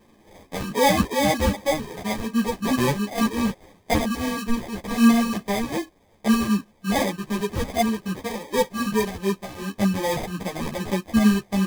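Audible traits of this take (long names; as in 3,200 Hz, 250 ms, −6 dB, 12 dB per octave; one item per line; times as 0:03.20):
a quantiser's noise floor 10 bits, dither triangular
phaser sweep stages 6, 2.6 Hz, lowest notch 560–2,500 Hz
aliases and images of a low sample rate 1,400 Hz, jitter 0%
a shimmering, thickened sound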